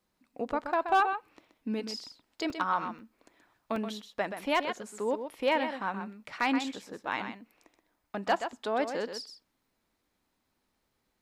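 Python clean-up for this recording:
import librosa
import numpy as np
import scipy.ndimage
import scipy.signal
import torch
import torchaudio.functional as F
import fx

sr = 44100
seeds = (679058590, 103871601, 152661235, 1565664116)

y = fx.fix_declip(x, sr, threshold_db=-17.0)
y = fx.fix_interpolate(y, sr, at_s=(2.15, 2.5, 2.99, 3.76, 6.82, 7.96), length_ms=2.4)
y = fx.fix_echo_inverse(y, sr, delay_ms=127, level_db=-8.5)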